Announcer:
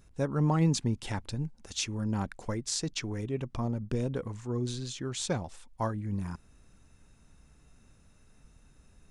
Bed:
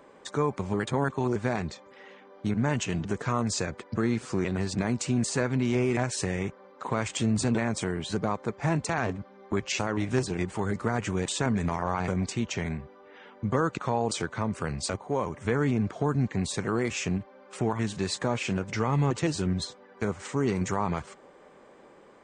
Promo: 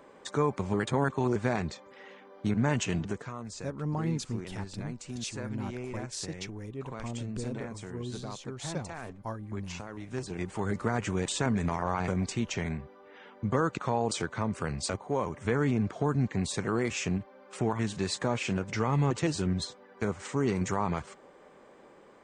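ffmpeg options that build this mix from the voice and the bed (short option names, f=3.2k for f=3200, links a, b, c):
-filter_complex "[0:a]adelay=3450,volume=-6dB[a];[1:a]volume=11dB,afade=t=out:st=2.97:d=0.34:silence=0.237137,afade=t=in:st=10.05:d=0.67:silence=0.266073[b];[a][b]amix=inputs=2:normalize=0"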